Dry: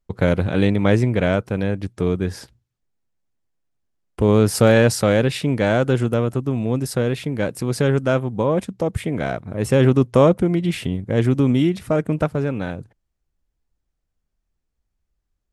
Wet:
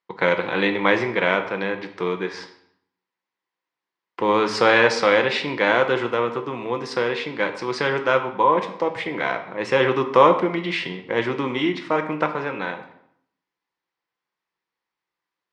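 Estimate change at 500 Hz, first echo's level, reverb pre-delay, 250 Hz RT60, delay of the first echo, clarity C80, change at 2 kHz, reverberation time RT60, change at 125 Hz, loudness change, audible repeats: -1.5 dB, no echo, 5 ms, 0.80 s, no echo, 13.0 dB, +6.0 dB, 0.70 s, -15.5 dB, -2.0 dB, no echo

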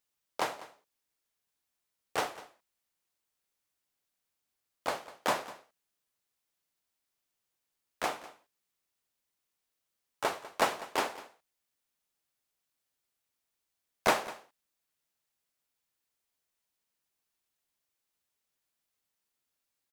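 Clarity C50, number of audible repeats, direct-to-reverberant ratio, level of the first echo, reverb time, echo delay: no reverb, 1, no reverb, -17.5 dB, no reverb, 199 ms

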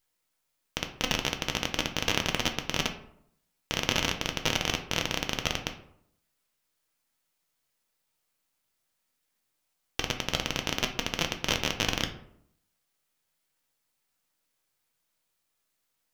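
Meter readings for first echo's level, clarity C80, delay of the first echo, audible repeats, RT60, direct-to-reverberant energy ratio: no echo, 14.0 dB, no echo, no echo, 0.70 s, 4.0 dB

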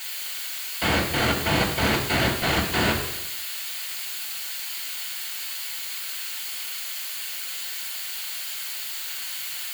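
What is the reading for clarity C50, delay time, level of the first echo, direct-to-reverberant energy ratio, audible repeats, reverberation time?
6.5 dB, no echo, no echo, -3.0 dB, no echo, 0.85 s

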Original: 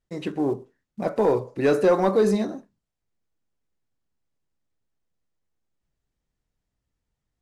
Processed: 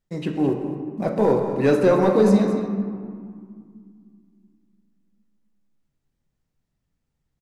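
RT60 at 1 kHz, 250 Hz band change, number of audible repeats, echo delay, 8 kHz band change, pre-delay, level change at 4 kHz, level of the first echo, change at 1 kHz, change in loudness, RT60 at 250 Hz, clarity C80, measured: 2.1 s, +6.0 dB, 1, 214 ms, no reading, 3 ms, +1.0 dB, -12.0 dB, +1.5 dB, +2.5 dB, 3.4 s, 6.0 dB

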